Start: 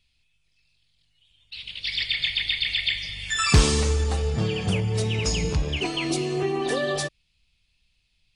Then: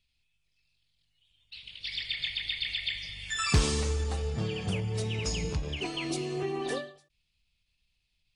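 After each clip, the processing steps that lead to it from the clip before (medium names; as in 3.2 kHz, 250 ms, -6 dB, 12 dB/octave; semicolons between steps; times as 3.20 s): endings held to a fixed fall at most 130 dB/s; trim -7 dB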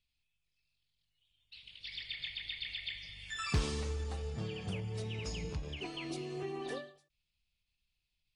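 dynamic bell 8.1 kHz, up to -6 dB, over -50 dBFS, Q 1; trim -7.5 dB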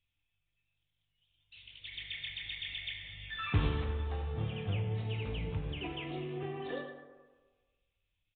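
reverberation RT60 1.4 s, pre-delay 5 ms, DRR 1.5 dB; resampled via 8 kHz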